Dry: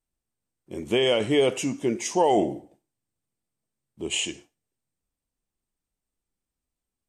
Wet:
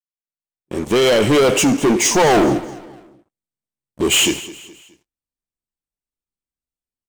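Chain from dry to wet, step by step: opening faded in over 1.71 s; sample leveller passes 5; feedback echo 0.21 s, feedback 42%, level -17.5 dB

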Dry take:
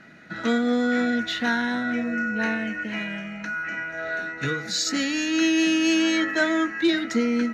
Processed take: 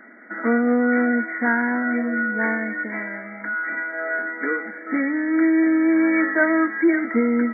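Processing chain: brick-wall FIR band-pass 210–2300 Hz; gain +4 dB

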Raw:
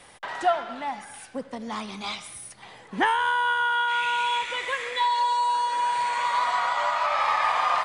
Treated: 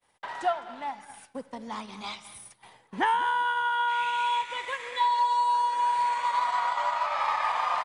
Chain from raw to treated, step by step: bell 930 Hz +6 dB 0.21 oct; feedback echo 0.209 s, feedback 29%, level -16 dB; expander -40 dBFS; transient shaper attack +1 dB, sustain -4 dB; gain -5.5 dB

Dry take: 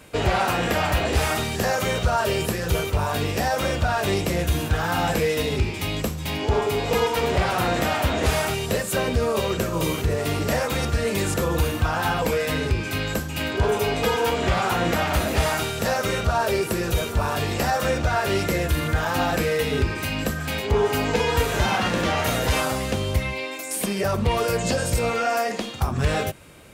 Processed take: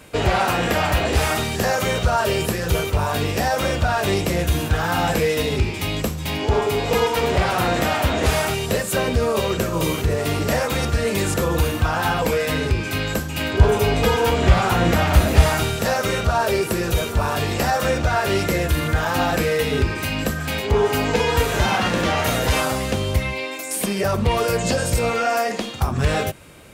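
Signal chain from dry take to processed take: 13.53–15.76 low shelf 140 Hz +10 dB; gain +2.5 dB

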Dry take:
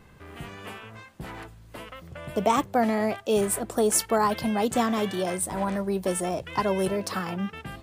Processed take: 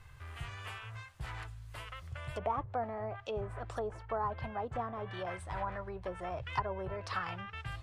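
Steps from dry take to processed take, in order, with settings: treble ducked by the level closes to 770 Hz, closed at -21 dBFS; EQ curve 120 Hz 0 dB, 200 Hz -25 dB, 1200 Hz -5 dB; gain +2 dB

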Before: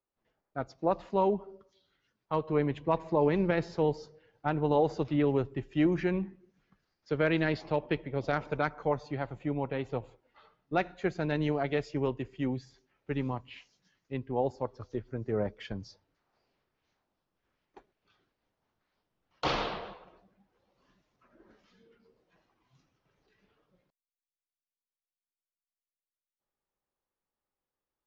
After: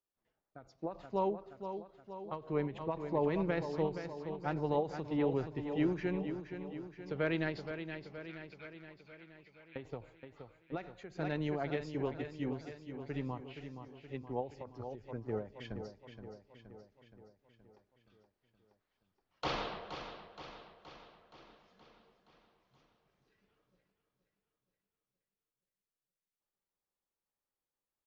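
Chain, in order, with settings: 7.71–9.76 ladder band-pass 2700 Hz, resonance 55%; feedback echo 0.472 s, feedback 58%, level -9 dB; ending taper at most 170 dB/s; gain -6 dB

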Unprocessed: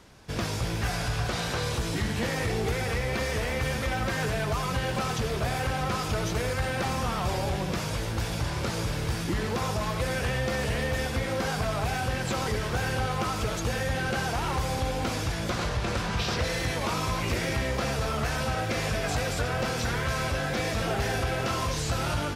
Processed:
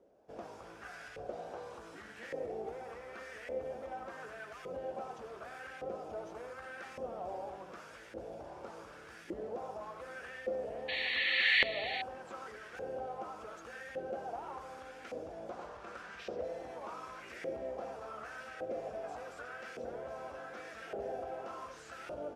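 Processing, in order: graphic EQ 125/1000/2000/4000 Hz -11/-12/-9/-9 dB; painted sound noise, 10.88–12.02, 1700–4500 Hz -22 dBFS; LFO band-pass saw up 0.86 Hz 520–1900 Hz; gain +1.5 dB

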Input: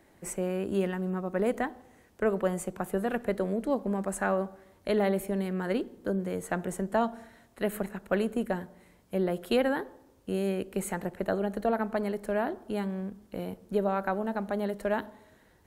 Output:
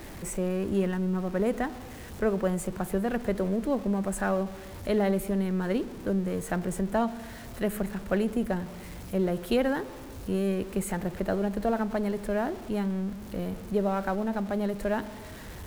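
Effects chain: zero-crossing step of -39 dBFS; low shelf 140 Hz +11.5 dB; gain -1.5 dB

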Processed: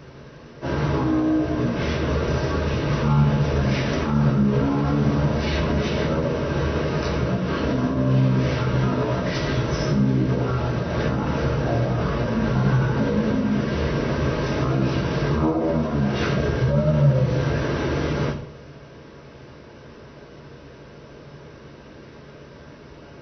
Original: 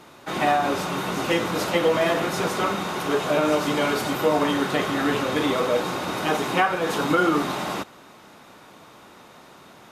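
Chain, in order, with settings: notch 1800 Hz, Q 7.6; limiter -18.5 dBFS, peak gain reduction 10.5 dB; reverb RT60 0.35 s, pre-delay 3 ms, DRR 2.5 dB; speed mistake 78 rpm record played at 33 rpm; gain +3 dB

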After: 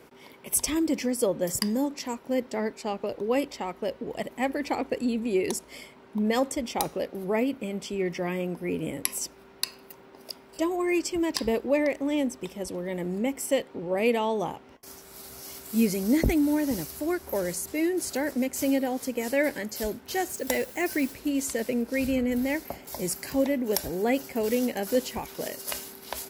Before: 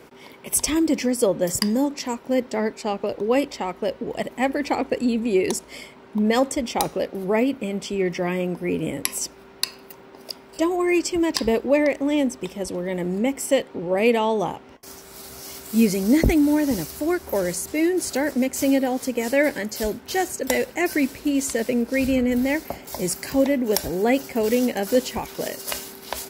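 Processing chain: bell 12000 Hz +4.5 dB 0.38 oct; 20.28–21.12 added noise blue -42 dBFS; gain -5.5 dB

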